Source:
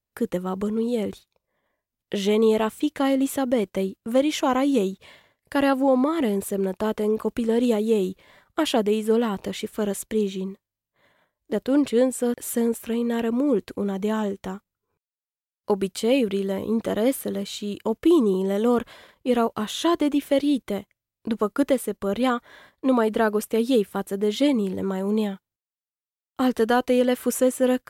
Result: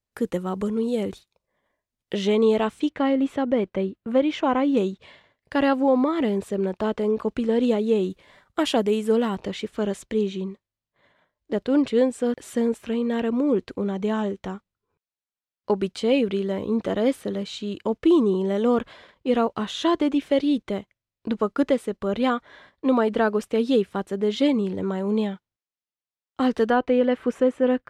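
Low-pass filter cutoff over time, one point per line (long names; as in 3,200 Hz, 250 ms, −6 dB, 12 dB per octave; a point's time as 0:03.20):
10,000 Hz
from 0:02.15 5,700 Hz
from 0:02.89 2,800 Hz
from 0:04.77 5,000 Hz
from 0:08.10 9,200 Hz
from 0:09.36 5,300 Hz
from 0:26.70 2,400 Hz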